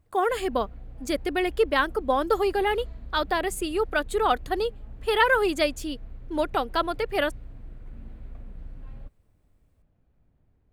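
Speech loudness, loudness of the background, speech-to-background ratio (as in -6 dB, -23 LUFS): -26.0 LUFS, -45.5 LUFS, 19.5 dB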